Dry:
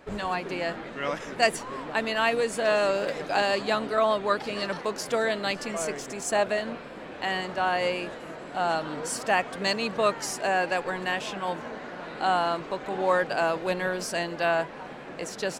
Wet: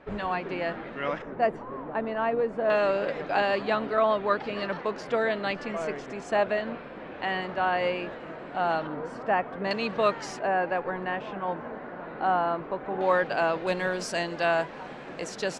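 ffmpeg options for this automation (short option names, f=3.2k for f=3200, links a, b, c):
-af "asetnsamples=n=441:p=0,asendcmd='1.22 lowpass f 1100;2.7 lowpass f 2800;8.87 lowpass f 1500;9.71 lowpass f 3900;10.39 lowpass f 1600;13.01 lowpass f 3900;13.67 lowpass f 7700',lowpass=2.8k"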